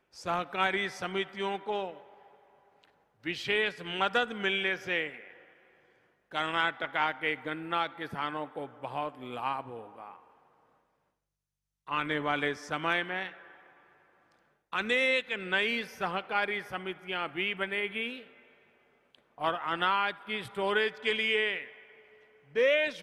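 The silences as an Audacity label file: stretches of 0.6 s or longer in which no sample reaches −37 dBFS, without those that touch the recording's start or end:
1.920000	3.260000	silence
5.270000	6.340000	silence
10.100000	11.880000	silence
13.300000	14.730000	silence
18.190000	19.410000	silence
21.650000	22.560000	silence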